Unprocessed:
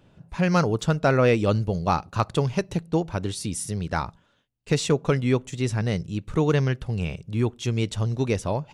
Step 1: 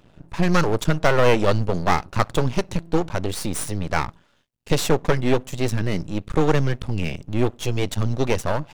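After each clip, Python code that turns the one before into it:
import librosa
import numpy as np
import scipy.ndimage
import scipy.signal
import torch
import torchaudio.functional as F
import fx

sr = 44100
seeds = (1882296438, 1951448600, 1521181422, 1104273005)

y = np.maximum(x, 0.0)
y = F.gain(torch.from_numpy(y), 7.5).numpy()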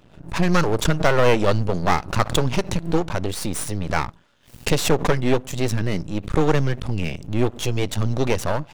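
y = fx.pre_swell(x, sr, db_per_s=150.0)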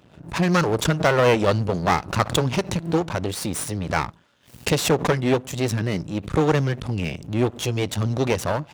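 y = scipy.signal.sosfilt(scipy.signal.butter(2, 68.0, 'highpass', fs=sr, output='sos'), x)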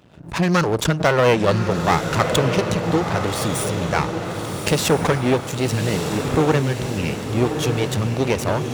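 y = fx.echo_diffused(x, sr, ms=1206, feedback_pct=53, wet_db=-6.0)
y = F.gain(torch.from_numpy(y), 1.5).numpy()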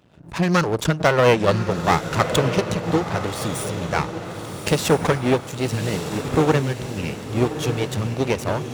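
y = fx.upward_expand(x, sr, threshold_db=-25.0, expansion=1.5)
y = F.gain(torch.from_numpy(y), 1.0).numpy()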